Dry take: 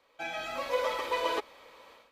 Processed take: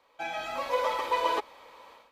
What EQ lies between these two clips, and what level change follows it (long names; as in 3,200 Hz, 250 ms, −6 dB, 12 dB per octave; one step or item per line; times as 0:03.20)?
parametric band 910 Hz +6.5 dB 0.55 octaves
0.0 dB